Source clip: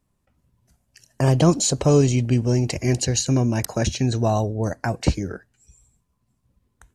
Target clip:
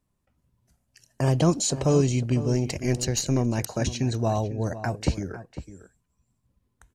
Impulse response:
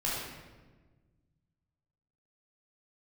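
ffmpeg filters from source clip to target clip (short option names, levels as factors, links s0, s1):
-filter_complex "[0:a]asplit=2[s0][s1];[s1]adelay=501.5,volume=0.224,highshelf=f=4000:g=-11.3[s2];[s0][s2]amix=inputs=2:normalize=0,asettb=1/sr,asplit=3[s3][s4][s5];[s3]atrim=end=2.534[s6];[s4]atrim=start=2.53:end=3.68,asetpts=PTS-STARTPTS,afade=t=in:d=0.004:c=qsin,afade=t=out:st=1.146:d=0.004:c=qsin,aeval=exprs='0.473*(cos(1*acos(clip(val(0)/0.473,-1,1)))-cos(1*PI/2))+0.0376*(cos(4*acos(clip(val(0)/0.473,-1,1)))-cos(4*PI/2))':c=same[s7];[s5]atrim=start=3.676[s8];[s6][s7]acrossfade=d=0.004:c1=hsin:c2=qsin[s9];[s9][s8]acrossfade=d=0.004:c1=qsin:c2=hsin,volume=0.596"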